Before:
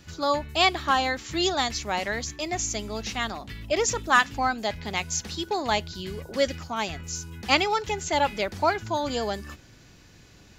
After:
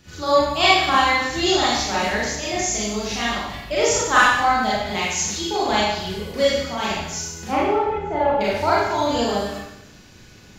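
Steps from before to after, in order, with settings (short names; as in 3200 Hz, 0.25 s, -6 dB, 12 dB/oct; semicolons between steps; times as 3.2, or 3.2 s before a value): 7.47–8.41 LPF 1100 Hz 12 dB/oct; Schroeder reverb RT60 0.9 s, combs from 30 ms, DRR -8 dB; gain -2 dB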